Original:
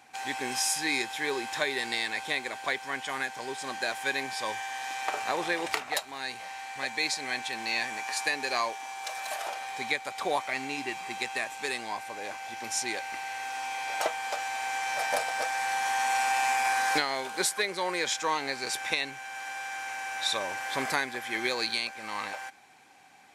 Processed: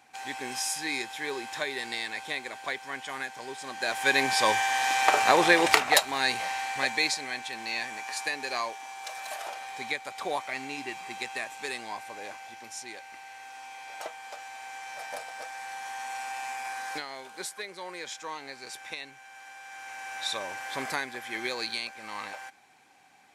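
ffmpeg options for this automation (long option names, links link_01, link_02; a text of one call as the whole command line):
ffmpeg -i in.wav -af "volume=16dB,afade=type=in:start_time=3.75:duration=0.59:silence=0.237137,afade=type=out:start_time=6.38:duration=0.92:silence=0.251189,afade=type=out:start_time=12.22:duration=0.5:silence=0.446684,afade=type=in:start_time=19.62:duration=0.53:silence=0.473151" out.wav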